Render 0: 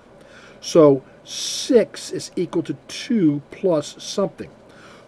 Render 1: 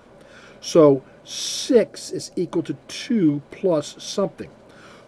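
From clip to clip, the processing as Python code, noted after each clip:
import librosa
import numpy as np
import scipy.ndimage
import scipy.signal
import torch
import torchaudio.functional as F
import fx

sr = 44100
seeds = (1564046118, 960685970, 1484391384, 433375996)

y = fx.spec_box(x, sr, start_s=1.87, length_s=0.65, low_hz=830.0, high_hz=4000.0, gain_db=-7)
y = y * librosa.db_to_amplitude(-1.0)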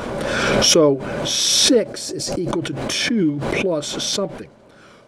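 y = fx.pre_swell(x, sr, db_per_s=22.0)
y = y * librosa.db_to_amplitude(-1.5)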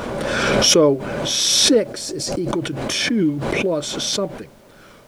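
y = fx.dmg_noise_colour(x, sr, seeds[0], colour='pink', level_db=-54.0)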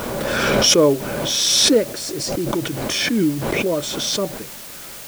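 y = fx.quant_dither(x, sr, seeds[1], bits=6, dither='triangular')
y = fx.attack_slew(y, sr, db_per_s=130.0)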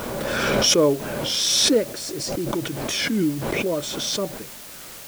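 y = fx.record_warp(x, sr, rpm=33.33, depth_cents=100.0)
y = y * librosa.db_to_amplitude(-3.5)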